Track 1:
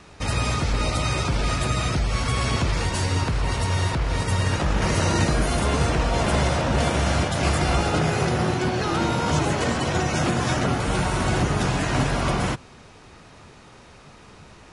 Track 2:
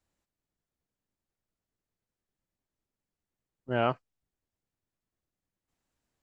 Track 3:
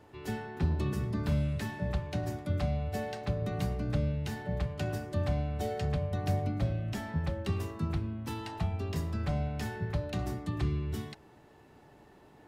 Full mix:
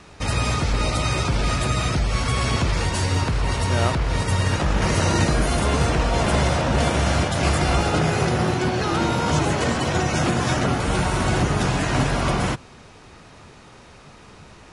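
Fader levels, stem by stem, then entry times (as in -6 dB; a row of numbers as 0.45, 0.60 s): +1.5, +2.0, -8.0 dB; 0.00, 0.00, 0.20 s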